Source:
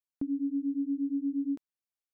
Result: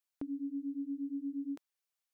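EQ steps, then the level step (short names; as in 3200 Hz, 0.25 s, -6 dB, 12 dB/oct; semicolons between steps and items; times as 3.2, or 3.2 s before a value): bell 230 Hz -8 dB; low shelf 340 Hz -12 dB; +5.0 dB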